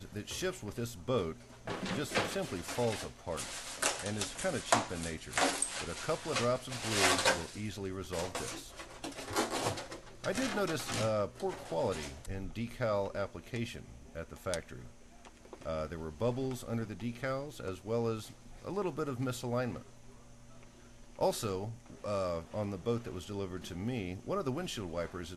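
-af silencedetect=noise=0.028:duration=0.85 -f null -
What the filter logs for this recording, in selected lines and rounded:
silence_start: 14.59
silence_end: 15.68 | silence_duration: 1.10
silence_start: 19.73
silence_end: 21.21 | silence_duration: 1.48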